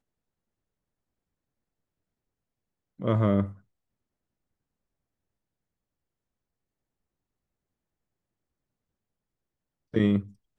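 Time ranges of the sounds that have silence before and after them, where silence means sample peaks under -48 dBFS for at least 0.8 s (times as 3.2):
2.99–3.58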